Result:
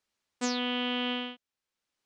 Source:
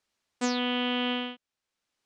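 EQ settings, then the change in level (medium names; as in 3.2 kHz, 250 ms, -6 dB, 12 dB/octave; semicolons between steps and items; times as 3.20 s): band-stop 690 Hz, Q 21; dynamic bell 6 kHz, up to +4 dB, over -50 dBFS, Q 0.8; -3.0 dB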